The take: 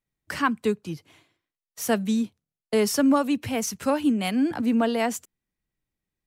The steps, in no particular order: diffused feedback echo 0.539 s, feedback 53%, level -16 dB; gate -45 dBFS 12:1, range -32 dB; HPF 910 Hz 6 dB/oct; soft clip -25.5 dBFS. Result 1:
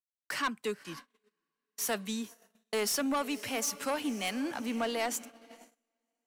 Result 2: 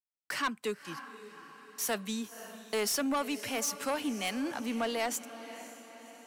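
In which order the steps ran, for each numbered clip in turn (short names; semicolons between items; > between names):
HPF > soft clip > diffused feedback echo > gate; HPF > gate > diffused feedback echo > soft clip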